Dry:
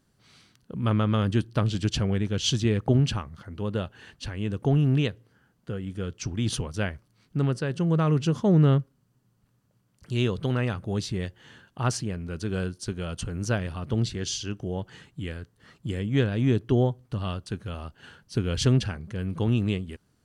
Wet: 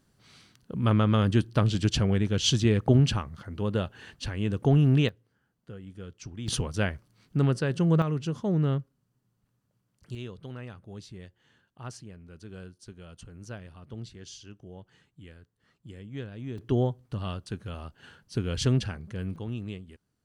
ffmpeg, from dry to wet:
-af "asetnsamples=n=441:p=0,asendcmd='5.09 volume volume -10dB;6.48 volume volume 1dB;8.02 volume volume -6.5dB;10.15 volume volume -14.5dB;16.58 volume volume -3dB;19.36 volume volume -11dB',volume=1.12"

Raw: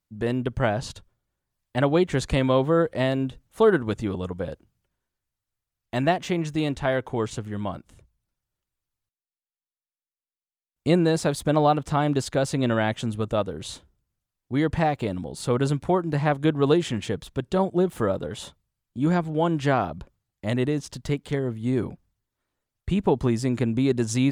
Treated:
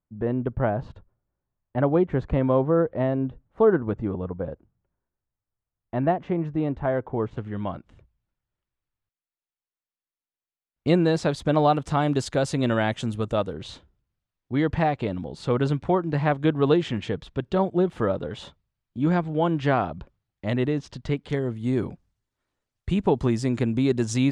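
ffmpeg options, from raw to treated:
-af "asetnsamples=n=441:p=0,asendcmd='7.37 lowpass f 2900;10.88 lowpass f 5300;11.59 lowpass f 8800;13.53 lowpass f 4000;21.3 lowpass f 8000',lowpass=1200"

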